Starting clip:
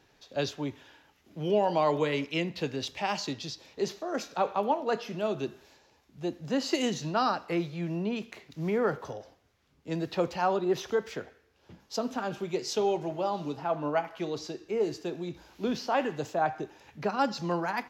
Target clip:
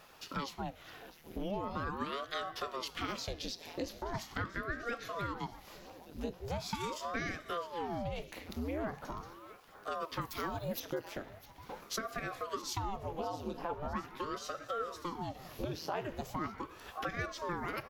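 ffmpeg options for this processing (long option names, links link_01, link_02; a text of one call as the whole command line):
ffmpeg -i in.wav -filter_complex "[0:a]aexciter=amount=3.7:drive=4.1:freq=9400,asettb=1/sr,asplit=3[link_01][link_02][link_03];[link_01]atrim=end=10.214[link_04];[link_02]atrim=start=10.21:end=10.8,asetpts=PTS-STARTPTS,afade=type=in:duration=0.004:curve=qsin,afade=type=out:start_time=0.586:duration=0.004:curve=qsin,aemphasis=mode=production:type=bsi[link_05];[link_03]atrim=start=10.796[link_06];[link_04][link_05]acrossfade=duration=0.004:curve1=hsin:curve2=qsin[link_07];[link_07][link_06]acrossfade=duration=0.004:curve1=qsin:curve2=hsin,acompressor=threshold=-44dB:ratio=4,aecho=1:1:657|1314|1971|2628|3285:0.141|0.0819|0.0475|0.0276|0.016,aeval=exprs='val(0)*sin(2*PI*510*n/s+510*0.85/0.41*sin(2*PI*0.41*n/s))':channel_layout=same,volume=8.5dB" out.wav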